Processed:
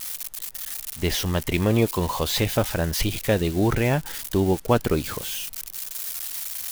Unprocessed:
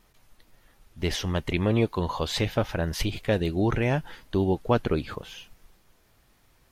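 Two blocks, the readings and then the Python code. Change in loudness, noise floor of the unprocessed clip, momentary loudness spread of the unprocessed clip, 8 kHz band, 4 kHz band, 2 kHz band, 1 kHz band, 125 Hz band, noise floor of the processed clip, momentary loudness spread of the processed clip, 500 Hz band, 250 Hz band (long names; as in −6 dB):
+2.5 dB, −63 dBFS, 7 LU, +12.5 dB, +5.0 dB, +3.5 dB, +3.0 dB, +3.0 dB, −39 dBFS, 9 LU, +3.0 dB, +3.0 dB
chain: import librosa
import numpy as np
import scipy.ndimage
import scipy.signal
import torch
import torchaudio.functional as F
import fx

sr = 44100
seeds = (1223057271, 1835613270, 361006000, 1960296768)

y = x + 0.5 * 10.0 ** (-26.0 / 20.0) * np.diff(np.sign(x), prepend=np.sign(x[:1]))
y = y * librosa.db_to_amplitude(3.0)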